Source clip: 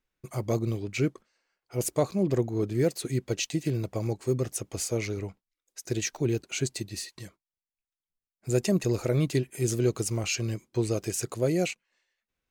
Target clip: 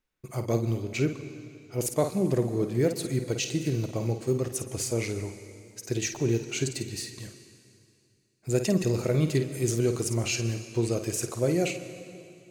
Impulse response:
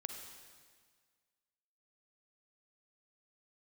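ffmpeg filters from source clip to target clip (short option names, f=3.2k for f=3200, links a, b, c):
-filter_complex "[0:a]asplit=2[a][b];[1:a]atrim=start_sample=2205,asetrate=29547,aresample=44100,adelay=52[c];[b][c]afir=irnorm=-1:irlink=0,volume=-7.5dB[d];[a][d]amix=inputs=2:normalize=0"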